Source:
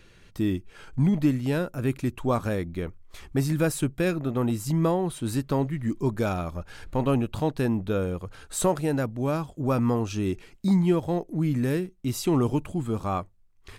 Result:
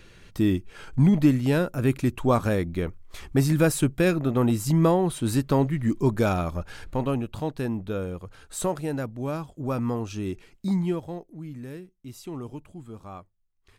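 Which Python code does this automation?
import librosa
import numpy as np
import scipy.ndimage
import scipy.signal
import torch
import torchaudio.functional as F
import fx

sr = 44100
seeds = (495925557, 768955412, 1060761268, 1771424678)

y = fx.gain(x, sr, db=fx.line((6.68, 3.5), (7.16, -3.5), (10.84, -3.5), (11.37, -13.0)))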